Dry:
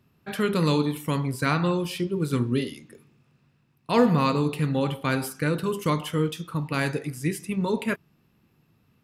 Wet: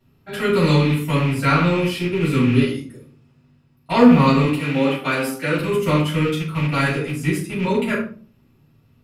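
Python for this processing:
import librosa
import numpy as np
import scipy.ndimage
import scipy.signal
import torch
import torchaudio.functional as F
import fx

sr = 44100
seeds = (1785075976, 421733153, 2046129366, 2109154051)

y = fx.rattle_buzz(x, sr, strikes_db=-31.0, level_db=-24.0)
y = fx.highpass(y, sr, hz=230.0, slope=12, at=(4.44, 5.59))
y = fx.room_shoebox(y, sr, seeds[0], volume_m3=330.0, walls='furnished', distance_m=7.1)
y = fx.dynamic_eq(y, sr, hz=1600.0, q=0.87, threshold_db=-29.0, ratio=4.0, max_db=4)
y = F.gain(torch.from_numpy(y), -7.0).numpy()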